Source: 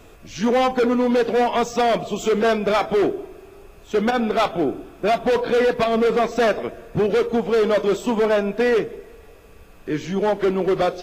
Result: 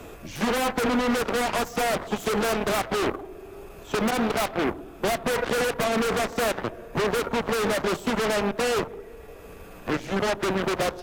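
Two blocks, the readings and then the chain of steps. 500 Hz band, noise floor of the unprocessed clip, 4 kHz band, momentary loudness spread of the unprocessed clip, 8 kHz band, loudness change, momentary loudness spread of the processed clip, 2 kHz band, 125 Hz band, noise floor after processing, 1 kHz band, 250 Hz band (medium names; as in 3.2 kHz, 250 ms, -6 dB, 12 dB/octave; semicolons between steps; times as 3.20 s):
-7.5 dB, -46 dBFS, 0.0 dB, 8 LU, no reading, -5.5 dB, 15 LU, -0.5 dB, -2.5 dB, -44 dBFS, -4.5 dB, -5.0 dB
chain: Chebyshev shaper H 3 -8 dB, 5 -7 dB, 7 -8 dB, 8 -25 dB, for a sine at -12 dBFS; peaking EQ 4.7 kHz -5 dB 2.2 oct; three bands compressed up and down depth 40%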